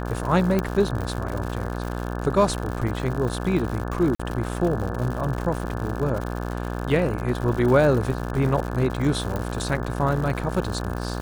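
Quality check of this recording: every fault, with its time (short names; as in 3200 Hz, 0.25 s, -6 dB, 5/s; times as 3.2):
buzz 60 Hz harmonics 29 -29 dBFS
crackle 150/s -29 dBFS
0.59 pop -10 dBFS
4.15–4.2 gap 45 ms
9.36 pop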